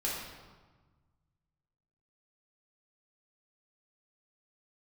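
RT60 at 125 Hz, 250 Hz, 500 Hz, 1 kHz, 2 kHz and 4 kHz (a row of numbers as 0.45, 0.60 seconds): 2.4, 1.7, 1.3, 1.4, 1.1, 0.95 seconds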